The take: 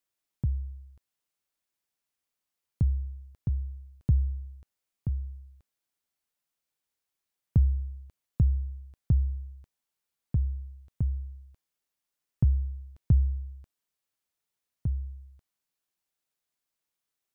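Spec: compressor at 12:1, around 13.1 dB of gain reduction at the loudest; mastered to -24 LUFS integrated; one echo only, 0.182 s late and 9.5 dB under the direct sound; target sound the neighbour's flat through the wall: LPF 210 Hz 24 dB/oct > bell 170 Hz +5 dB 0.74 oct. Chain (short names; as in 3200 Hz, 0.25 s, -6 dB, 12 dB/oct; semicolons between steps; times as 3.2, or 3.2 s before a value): compressor 12:1, threshold -31 dBFS; LPF 210 Hz 24 dB/oct; bell 170 Hz +5 dB 0.74 oct; echo 0.182 s -9.5 dB; gain +15 dB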